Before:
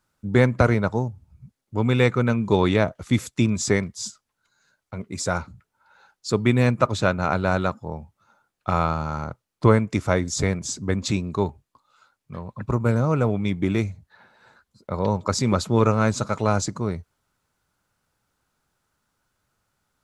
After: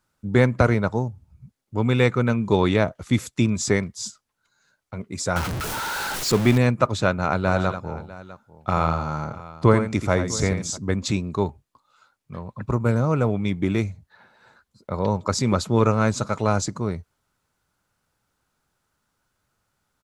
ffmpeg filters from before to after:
-filter_complex "[0:a]asettb=1/sr,asplit=3[s0][s1][s2];[s0]atrim=end=5.364[s3];[s1]atrim=start=5.36:end=6.58,asetpts=PTS-STARTPTS,afade=t=in:d=0.004:c=qsin,afade=t=out:st=1.216:d=0.004:c=qsin,aeval=exprs='val(0)+0.5*0.0794*sgn(val(0))':c=same[s4];[s2]atrim=start=6.576[s5];[s3][s4]acrossfade=d=0.004:c1=hsin:c2=qsin[s6];[s6][s5]acrossfade=d=0.004:c1=qsin:c2=hsin,asplit=3[s7][s8][s9];[s7]afade=t=out:st=7.45:d=0.02[s10];[s8]aecho=1:1:85|650:0.355|0.126,afade=t=in:st=7.45:d=0.02,afade=t=out:st=10.76:d=0.02[s11];[s9]afade=t=in:st=10.76:d=0.02[s12];[s10][s11][s12]amix=inputs=3:normalize=0"

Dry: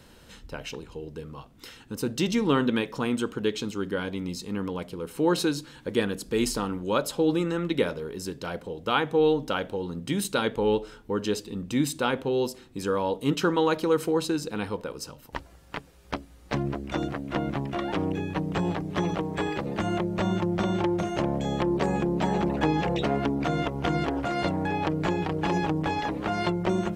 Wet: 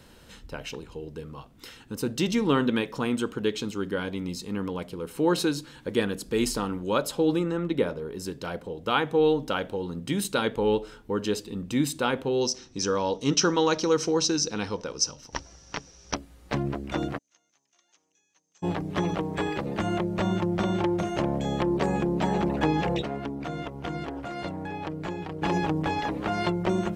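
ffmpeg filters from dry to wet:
-filter_complex "[0:a]asplit=3[s0][s1][s2];[s0]afade=t=out:st=7.38:d=0.02[s3];[s1]adynamicequalizer=threshold=0.00708:dfrequency=1500:dqfactor=0.7:tfrequency=1500:tqfactor=0.7:attack=5:release=100:ratio=0.375:range=3.5:mode=cutabove:tftype=highshelf,afade=t=in:st=7.38:d=0.02,afade=t=out:st=8.9:d=0.02[s4];[s2]afade=t=in:st=8.9:d=0.02[s5];[s3][s4][s5]amix=inputs=3:normalize=0,asettb=1/sr,asplit=3[s6][s7][s8];[s6]atrim=end=12.414[s9];[s7]atrim=start=12.41:end=16.15,asetpts=PTS-STARTPTS,afade=t=in:d=0.004:c=qsin,afade=t=out:st=3.736:d=0.004:c=qsin,lowpass=f=5800:t=q:w=15[s10];[s8]atrim=start=16.146[s11];[s9][s10]acrossfade=d=0.004:c1=hsin:c2=qsin[s12];[s12][s11]acrossfade=d=0.004:c1=qsin:c2=hsin,asplit=3[s13][s14][s15];[s13]afade=t=out:st=17.17:d=0.02[s16];[s14]bandpass=f=6300:t=q:w=15,afade=t=in:st=17.17:d=0.02,afade=t=out:st=18.62:d=0.02[s17];[s15]afade=t=in:st=18.62:d=0.02[s18];[s16][s17][s18]amix=inputs=3:normalize=0,asplit=3[s19][s20][s21];[s19]atrim=end=23.022[s22];[s20]atrim=start=23.018:end=25.422,asetpts=PTS-STARTPTS,volume=0.447[s23];[s21]atrim=start=25.418[s24];[s22][s23]acrossfade=d=0.004:c1=hsin:c2=hsin[s25];[s25][s24]acrossfade=d=0.004:c1=hsin:c2=hsin"

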